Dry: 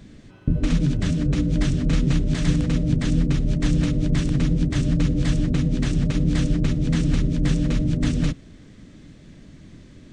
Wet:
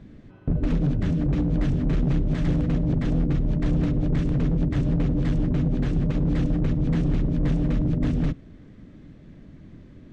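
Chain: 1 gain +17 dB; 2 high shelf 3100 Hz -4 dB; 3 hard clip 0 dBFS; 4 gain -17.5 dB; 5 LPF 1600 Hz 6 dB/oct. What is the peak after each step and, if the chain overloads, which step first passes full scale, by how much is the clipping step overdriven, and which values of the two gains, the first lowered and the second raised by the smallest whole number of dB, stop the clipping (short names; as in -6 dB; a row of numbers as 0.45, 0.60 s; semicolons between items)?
+9.5, +9.5, 0.0, -17.5, -17.5 dBFS; step 1, 9.5 dB; step 1 +7 dB, step 4 -7.5 dB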